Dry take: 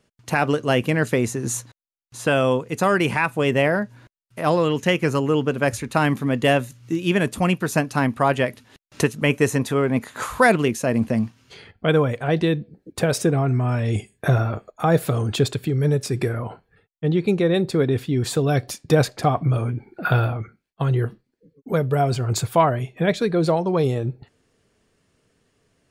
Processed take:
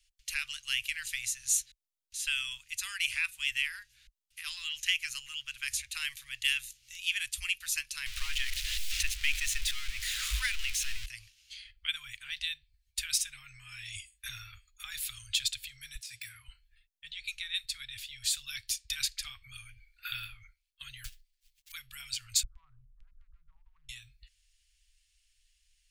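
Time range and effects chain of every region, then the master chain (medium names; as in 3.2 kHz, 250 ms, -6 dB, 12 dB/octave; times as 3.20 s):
8.06–11.06 s: jump at every zero crossing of -19.5 dBFS + low-pass 2.8 kHz 6 dB/octave
15.95–16.48 s: de-esser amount 85% + high-pass 97 Hz
21.04–21.72 s: short-mantissa float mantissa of 2-bit + comb 7.4 ms, depth 90%
22.43–23.89 s: steep low-pass 1.3 kHz 72 dB/octave + tilt shelf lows +8 dB, about 680 Hz + compression, threshold -24 dBFS
whole clip: inverse Chebyshev band-stop 180–600 Hz, stop band 80 dB; bass shelf 390 Hz +8.5 dB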